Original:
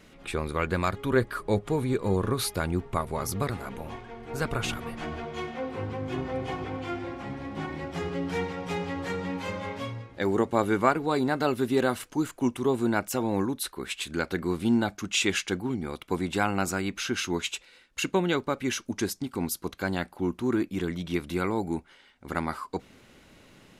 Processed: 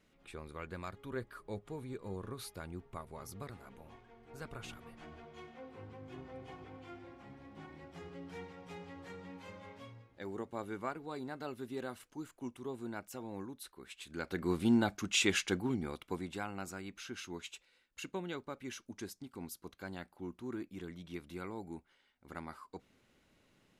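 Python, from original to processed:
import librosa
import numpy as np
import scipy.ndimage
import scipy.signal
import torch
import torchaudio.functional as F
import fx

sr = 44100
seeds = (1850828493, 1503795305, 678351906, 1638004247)

y = fx.gain(x, sr, db=fx.line((13.97, -17.0), (14.51, -4.5), (15.76, -4.5), (16.46, -15.5)))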